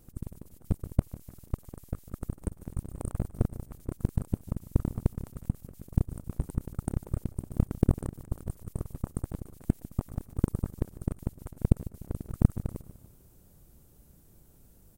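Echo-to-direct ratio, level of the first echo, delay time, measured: -16.0 dB, -17.0 dB, 149 ms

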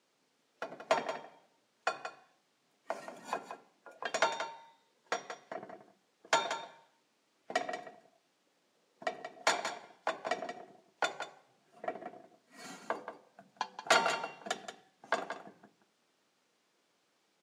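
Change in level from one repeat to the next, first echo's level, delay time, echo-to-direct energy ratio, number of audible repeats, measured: no regular repeats, -9.5 dB, 178 ms, -9.5 dB, 1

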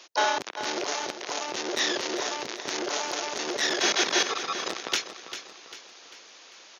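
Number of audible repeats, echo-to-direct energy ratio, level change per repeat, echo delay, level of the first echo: 4, -10.0 dB, -7.0 dB, 396 ms, -11.0 dB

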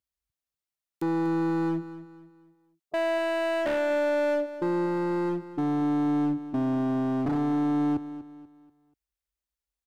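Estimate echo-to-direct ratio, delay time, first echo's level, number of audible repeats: -13.5 dB, 242 ms, -14.0 dB, 3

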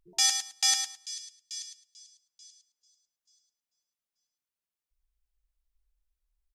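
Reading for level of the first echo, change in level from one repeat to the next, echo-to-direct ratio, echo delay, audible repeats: -7.5 dB, -15.0 dB, -7.5 dB, 107 ms, 2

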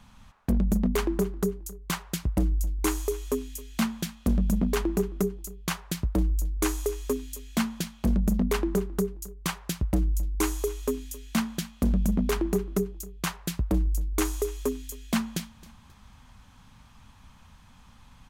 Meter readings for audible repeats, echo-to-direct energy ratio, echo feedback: 2, -20.0 dB, 32%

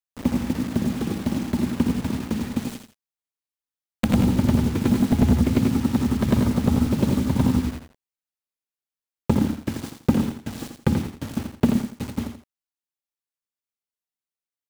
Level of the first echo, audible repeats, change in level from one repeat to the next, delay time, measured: -7.0 dB, 2, -11.0 dB, 84 ms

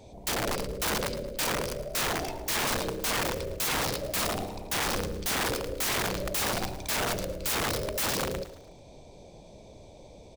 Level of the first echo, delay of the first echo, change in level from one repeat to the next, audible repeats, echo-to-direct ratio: -15.0 dB, 110 ms, -7.0 dB, 3, -14.0 dB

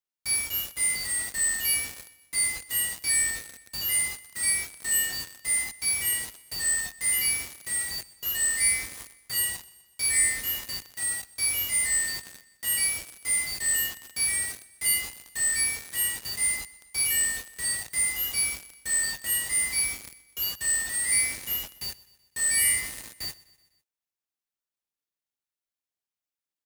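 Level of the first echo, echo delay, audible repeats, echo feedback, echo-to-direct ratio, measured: -21.0 dB, 125 ms, 3, 55%, -19.5 dB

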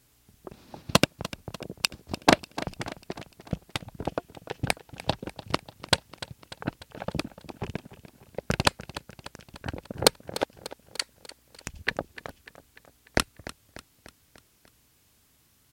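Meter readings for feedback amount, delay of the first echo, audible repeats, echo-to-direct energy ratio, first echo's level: 56%, 296 ms, 4, -14.0 dB, -15.5 dB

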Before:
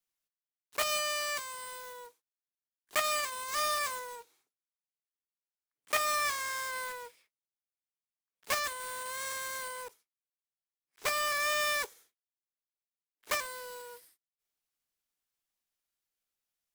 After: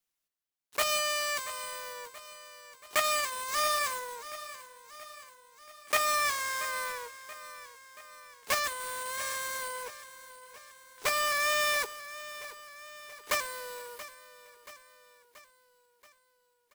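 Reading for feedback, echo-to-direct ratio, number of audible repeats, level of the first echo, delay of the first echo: 56%, -13.5 dB, 4, -15.0 dB, 680 ms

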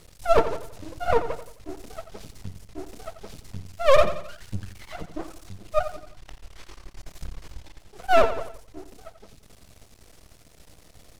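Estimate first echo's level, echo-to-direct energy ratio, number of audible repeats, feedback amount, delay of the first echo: -11.5 dB, -10.5 dB, 4, 43%, 87 ms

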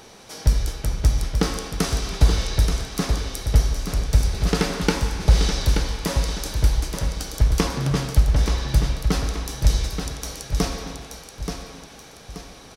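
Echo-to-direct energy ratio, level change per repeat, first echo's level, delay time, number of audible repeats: -6.5 dB, -8.0 dB, -7.0 dB, 879 ms, 3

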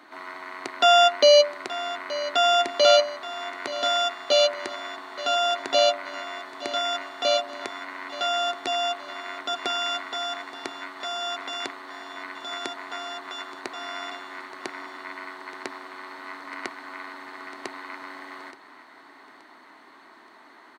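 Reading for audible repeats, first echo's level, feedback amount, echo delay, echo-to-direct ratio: 3, -15.5 dB, 40%, 875 ms, -14.5 dB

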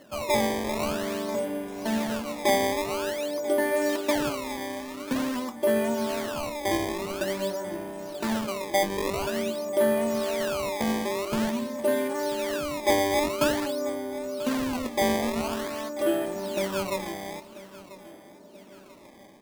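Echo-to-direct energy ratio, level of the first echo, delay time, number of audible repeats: -16.0 dB, -17.0 dB, 989 ms, 2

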